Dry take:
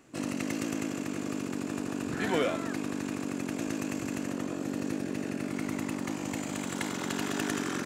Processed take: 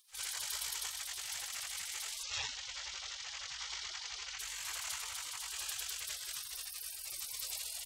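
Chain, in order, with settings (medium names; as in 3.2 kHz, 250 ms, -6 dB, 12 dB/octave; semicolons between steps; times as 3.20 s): spectral gate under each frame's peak -30 dB weak; 2.23–4.39 s: steep low-pass 6.4 kHz 36 dB/octave; trim +10.5 dB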